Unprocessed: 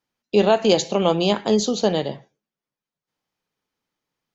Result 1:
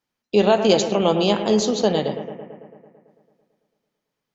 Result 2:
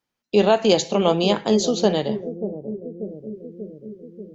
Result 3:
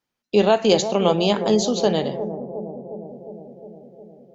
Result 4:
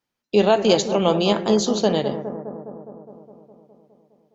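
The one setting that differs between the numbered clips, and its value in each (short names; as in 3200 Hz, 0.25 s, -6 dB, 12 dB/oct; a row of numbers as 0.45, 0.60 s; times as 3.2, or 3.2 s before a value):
analogue delay, time: 0.111, 0.587, 0.358, 0.206 s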